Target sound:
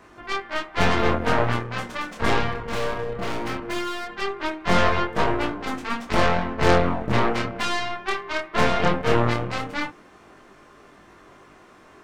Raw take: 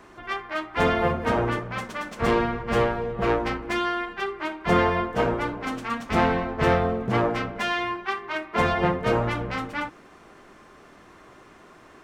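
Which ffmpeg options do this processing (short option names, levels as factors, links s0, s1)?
-filter_complex "[0:a]aeval=exprs='0.473*(cos(1*acos(clip(val(0)/0.473,-1,1)))-cos(1*PI/2))+0.0841*(cos(8*acos(clip(val(0)/0.473,-1,1)))-cos(8*PI/2))':c=same,asettb=1/sr,asplit=3[s0][s1][s2];[s0]atrim=end=2.514[s3];[s1]atrim=start=2.51:end=4.07,asetpts=PTS-STARTPTS,afade=t=in:d=0.004:c=qsin,afade=t=out:st=1.556:d=0.004:c=qsin,asoftclip=type=hard:threshold=0.0891[s4];[s2]atrim=start=4.066[s5];[s3][s4]acrossfade=d=0.004:c1=hsin:c2=qsin[s6];[s6][s5]acrossfade=d=0.004:c1=qsin:c2=hsin,flanger=delay=20:depth=7.5:speed=0.18,volume=1.41"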